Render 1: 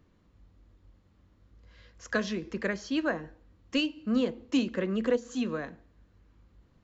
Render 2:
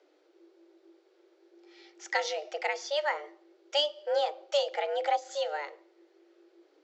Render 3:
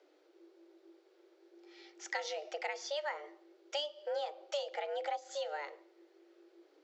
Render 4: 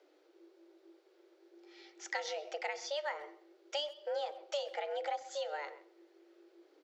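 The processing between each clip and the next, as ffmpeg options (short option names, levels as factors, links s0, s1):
-af "afreqshift=290,lowpass=f=5600:w=0.5412,lowpass=f=5600:w=1.3066,aemphasis=mode=production:type=75fm,volume=0.891"
-af "acompressor=threshold=0.0158:ratio=2.5,volume=0.841"
-filter_complex "[0:a]asplit=2[s0][s1];[s1]adelay=130,highpass=300,lowpass=3400,asoftclip=type=hard:threshold=0.0251,volume=0.158[s2];[s0][s2]amix=inputs=2:normalize=0"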